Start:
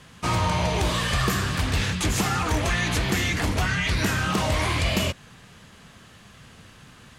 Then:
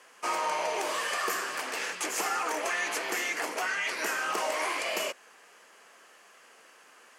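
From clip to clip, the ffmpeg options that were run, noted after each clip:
-af "highpass=f=400:w=0.5412,highpass=f=400:w=1.3066,equalizer=f=3.7k:w=3.2:g=-11,volume=-3dB"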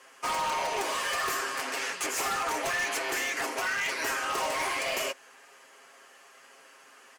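-af "aecho=1:1:7.4:0.67,aeval=exprs='0.0631*(abs(mod(val(0)/0.0631+3,4)-2)-1)':c=same"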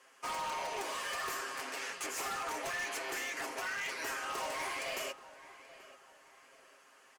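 -filter_complex "[0:a]asplit=2[a][b];[b]adelay=832,lowpass=f=3k:p=1,volume=-16dB,asplit=2[c][d];[d]adelay=832,lowpass=f=3k:p=1,volume=0.39,asplit=2[e][f];[f]adelay=832,lowpass=f=3k:p=1,volume=0.39[g];[a][c][e][g]amix=inputs=4:normalize=0,volume=-8dB"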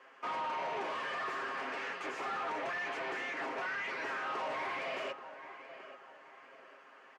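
-af "asoftclip=type=hard:threshold=-40dB,highpass=160,lowpass=2.3k,volume=6dB"

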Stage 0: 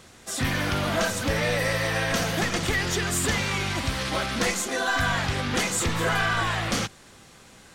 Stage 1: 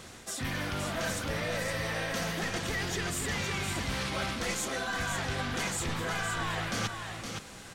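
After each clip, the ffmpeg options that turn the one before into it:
-af "areverse,acompressor=threshold=-33dB:ratio=12,areverse,aecho=1:1:516:0.501,volume=2.5dB"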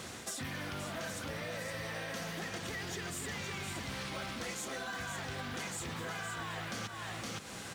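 -af "highpass=79,acompressor=threshold=-41dB:ratio=6,acrusher=bits=6:mode=log:mix=0:aa=0.000001,volume=3dB"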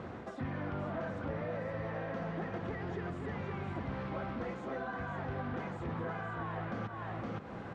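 -af "lowpass=1.1k,volume=4.5dB"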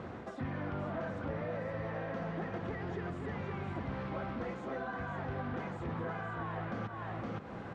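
-af anull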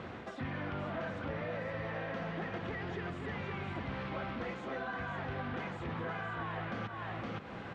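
-af "equalizer=f=3k:t=o:w=1.8:g=8.5,volume=-1.5dB"

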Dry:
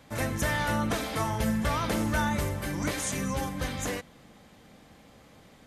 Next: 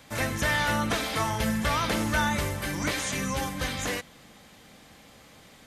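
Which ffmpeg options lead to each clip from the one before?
-filter_complex "[0:a]acrossover=split=5100[a][b];[b]acompressor=threshold=-45dB:ratio=4:attack=1:release=60[c];[a][c]amix=inputs=2:normalize=0,tiltshelf=f=1.3k:g=-4,volume=3.5dB"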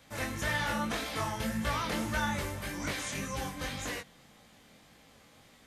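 -af "flanger=delay=17:depth=6.8:speed=1.8,volume=-3.5dB"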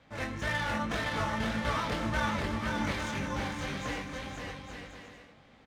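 -filter_complex "[0:a]adynamicsmooth=sensitivity=7.5:basefreq=3.2k,asplit=2[a][b];[b]aecho=0:1:520|858|1078|1221|1313:0.631|0.398|0.251|0.158|0.1[c];[a][c]amix=inputs=2:normalize=0"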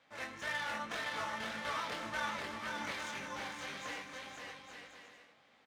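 -af "highpass=f=760:p=1,volume=-4dB"

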